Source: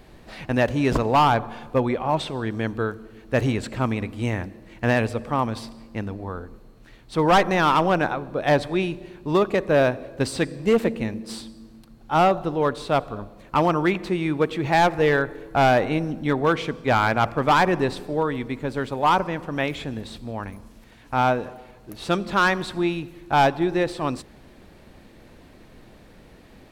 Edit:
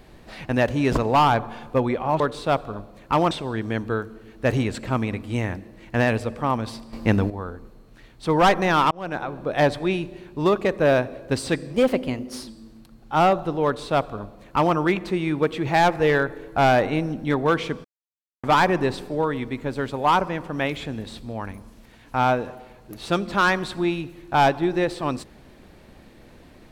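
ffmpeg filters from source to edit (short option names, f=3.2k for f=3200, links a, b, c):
-filter_complex "[0:a]asplit=10[a][b][c][d][e][f][g][h][i][j];[a]atrim=end=2.202[k];[b]atrim=start=12.628:end=13.742[l];[c]atrim=start=2.198:end=5.822[m];[d]atrim=start=5.818:end=6.192,asetpts=PTS-STARTPTS,volume=10.5dB[n];[e]atrim=start=6.188:end=7.8,asetpts=PTS-STARTPTS,afade=t=out:st=1.608:d=0.004:c=hsin[o];[f]atrim=start=7.8:end=10.634,asetpts=PTS-STARTPTS,afade=t=in:d=0.47[p];[g]atrim=start=10.63:end=11.46,asetpts=PTS-STARTPTS,asetrate=49833,aresample=44100,atrim=end_sample=32392,asetpts=PTS-STARTPTS[q];[h]atrim=start=11.456:end=16.83,asetpts=PTS-STARTPTS,afade=t=out:st=5.37:d=0.004:c=hsin[r];[i]atrim=start=16.83:end=17.42,asetpts=PTS-STARTPTS,volume=0[s];[j]atrim=start=17.42,asetpts=PTS-STARTPTS,afade=t=in:d=0.004:c=hsin[t];[k][l]acrossfade=d=0.004:c1=hsin:c2=hsin[u];[u][m]acrossfade=d=0.004:c1=hsin:c2=hsin[v];[v][n]acrossfade=d=0.004:c1=hsin:c2=hsin[w];[o][p]concat=n=2:v=0:a=1[x];[w][x]acrossfade=d=0.004:c1=hsin:c2=hsin[y];[y][q]acrossfade=d=0.004:c1=hsin:c2=hsin[z];[r][s][t]concat=n=3:v=0:a=1[aa];[z][aa]acrossfade=d=0.004:c1=hsin:c2=hsin"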